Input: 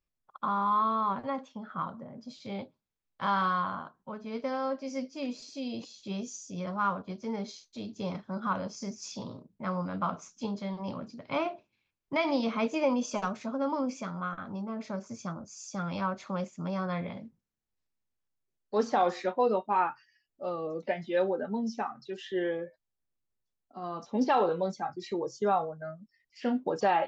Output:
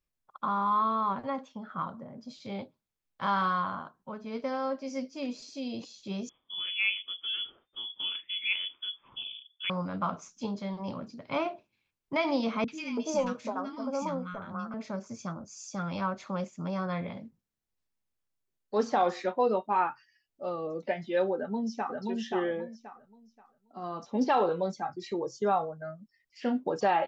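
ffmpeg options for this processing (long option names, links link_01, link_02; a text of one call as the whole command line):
ffmpeg -i in.wav -filter_complex "[0:a]asettb=1/sr,asplit=3[link_01][link_02][link_03];[link_01]atrim=end=6.294[link_04];[link_02]atrim=start=6.29:end=9.7,asetpts=PTS-STARTPTS,afade=type=in:duration=0.004:curve=qsin,afade=type=out:start_time=3.406:duration=0.004:curve=qsin,lowpass=frequency=3100:width_type=q:width=0.5098,lowpass=frequency=3100:width_type=q:width=0.6013,lowpass=frequency=3100:width_type=q:width=0.9,lowpass=frequency=3100:width_type=q:width=2.563,afreqshift=-3600[link_05];[link_03]atrim=start=9.696[link_06];[link_04][link_05]acrossfade=duration=0.004:curve1=hsin:curve2=qsin[link_07];[link_07][link_06]acrossfade=duration=0.004:curve1=qsin:curve2=hsin,asettb=1/sr,asplit=3[link_08][link_09][link_10];[link_08]atrim=end=12.644[link_11];[link_09]atrim=start=12.64:end=14.74,asetpts=PTS-STARTPTS,afade=type=in:duration=0.004:curve=qsin,afade=type=out:start_time=2.096:duration=0.004:curve=qsin,acrossover=split=270|1400[link_12][link_13][link_14];[link_14]adelay=40[link_15];[link_13]adelay=330[link_16];[link_12][link_16][link_15]amix=inputs=3:normalize=0,atrim=end_sample=92610[link_17];[link_10]atrim=start=14.736[link_18];[link_11][link_17]acrossfade=duration=0.004:curve1=hsin:curve2=qsin[link_19];[link_19][link_18]acrossfade=duration=0.004:curve1=qsin:curve2=hsin,asplit=2[link_20][link_21];[link_21]afade=type=in:start_time=21.36:duration=0.01,afade=type=out:start_time=22:duration=0.01,aecho=0:1:530|1060|1590|2120:0.794328|0.198582|0.0496455|0.0124114[link_22];[link_20][link_22]amix=inputs=2:normalize=0" out.wav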